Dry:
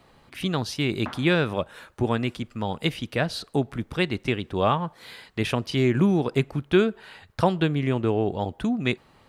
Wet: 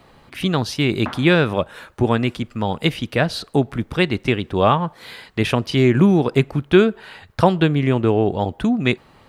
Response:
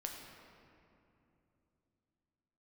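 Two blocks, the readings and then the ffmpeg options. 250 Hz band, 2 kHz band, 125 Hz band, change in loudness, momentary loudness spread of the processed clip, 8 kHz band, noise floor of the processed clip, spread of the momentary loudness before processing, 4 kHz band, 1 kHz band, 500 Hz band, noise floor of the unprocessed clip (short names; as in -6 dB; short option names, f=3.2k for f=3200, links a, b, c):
+6.5 dB, +6.0 dB, +6.5 dB, +6.5 dB, 10 LU, +4.0 dB, -52 dBFS, 10 LU, +5.5 dB, +6.5 dB, +6.5 dB, -58 dBFS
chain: -af "equalizer=f=8.4k:t=o:w=2:g=-2.5,volume=6.5dB"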